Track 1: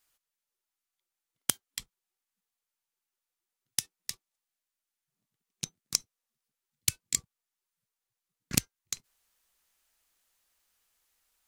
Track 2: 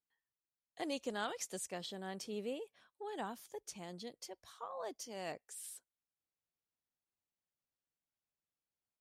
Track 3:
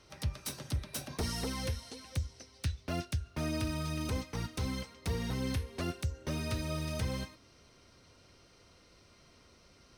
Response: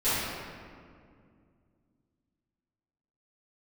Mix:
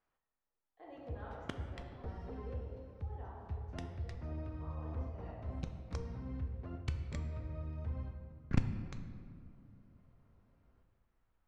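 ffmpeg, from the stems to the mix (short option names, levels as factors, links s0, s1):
-filter_complex "[0:a]asoftclip=type=tanh:threshold=0.335,volume=1.06,asplit=2[s0][s1];[s1]volume=0.106[s2];[1:a]lowshelf=f=310:g=-11.5,volume=0.178,asplit=2[s3][s4];[s4]volume=0.631[s5];[2:a]adelay=850,volume=0.237,asplit=2[s6][s7];[s7]volume=0.126[s8];[3:a]atrim=start_sample=2205[s9];[s2][s5][s8]amix=inputs=3:normalize=0[s10];[s10][s9]afir=irnorm=-1:irlink=0[s11];[s0][s3][s6][s11]amix=inputs=4:normalize=0,lowpass=1200,asubboost=boost=2.5:cutoff=110"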